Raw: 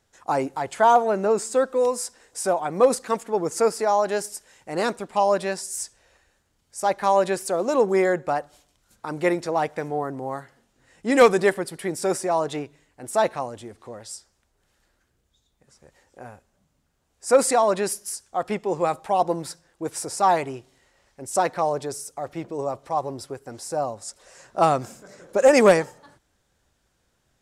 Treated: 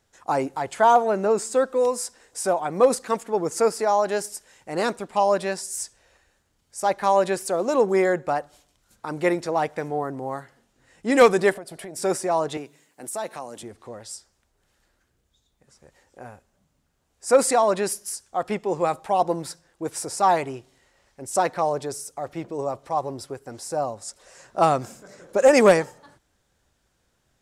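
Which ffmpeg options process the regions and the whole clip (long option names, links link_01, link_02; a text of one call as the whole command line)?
ffmpeg -i in.wav -filter_complex "[0:a]asettb=1/sr,asplit=3[link_01][link_02][link_03];[link_01]atrim=end=11.554[link_04];[link_02]atrim=start=11.55:end=11.96,asetpts=PTS-STARTPTS,afade=type=in:duration=0.004:curve=qsin,afade=type=out:start_time=0.406:duration=0.004:curve=qsin,equalizer=frequency=660:width_type=o:width=0.32:gain=15,bandreject=frequency=1900:width=22,acompressor=threshold=-34dB:ratio=6:attack=3.2:release=140:knee=1:detection=peak[link_05];[link_03]atrim=start=11.956[link_06];[link_04][link_05]acrossfade=duration=0.004:curve1=hsin:curve2=qsin[link_07];[link_07][link_06]acrossfade=duration=0.004:curve1=qsin:curve2=hsin,asettb=1/sr,asplit=3[link_08][link_09][link_10];[link_08]atrim=end=12.574[link_11];[link_09]atrim=start=12.57:end=13.63,asetpts=PTS-STARTPTS,afade=type=in:duration=0.004:curve=qsin,afade=type=out:start_time=1.056:duration=0.004:curve=qsin,highpass=frequency=150:width=0.5412,highpass=frequency=150:width=1.3066,highshelf=frequency=6700:gain=12,acompressor=threshold=-34dB:ratio=2:attack=3.2:release=140:knee=1:detection=peak[link_12];[link_10]atrim=start=13.626[link_13];[link_11][link_12]acrossfade=duration=0.004:curve1=hsin:curve2=qsin[link_14];[link_14][link_13]acrossfade=duration=0.004:curve1=qsin:curve2=hsin" out.wav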